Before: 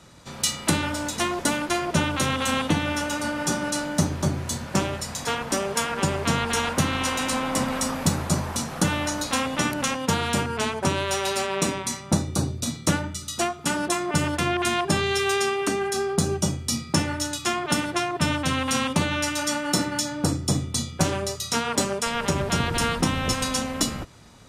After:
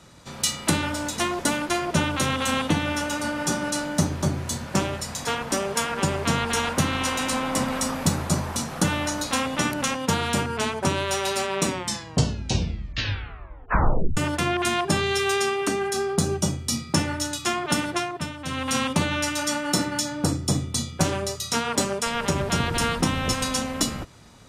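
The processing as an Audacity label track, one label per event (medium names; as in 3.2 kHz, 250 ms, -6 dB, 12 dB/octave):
11.650000	11.650000	tape stop 2.52 s
17.930000	18.760000	dip -12.5 dB, fades 0.40 s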